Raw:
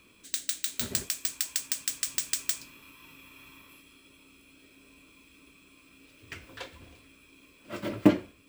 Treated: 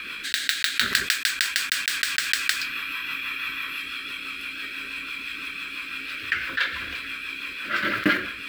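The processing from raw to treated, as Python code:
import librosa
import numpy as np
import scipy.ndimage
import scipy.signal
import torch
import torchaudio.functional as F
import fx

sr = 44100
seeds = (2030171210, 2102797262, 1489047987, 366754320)

y = fx.block_float(x, sr, bits=5)
y = fx.band_shelf(y, sr, hz=2400.0, db=14.5, octaves=2.3)
y = fx.rotary(y, sr, hz=6.0)
y = fx.graphic_eq_15(y, sr, hz=(100, 1600, 16000), db=(-7, 11, 9))
y = fx.env_flatten(y, sr, amount_pct=50)
y = F.gain(torch.from_numpy(y), -4.0).numpy()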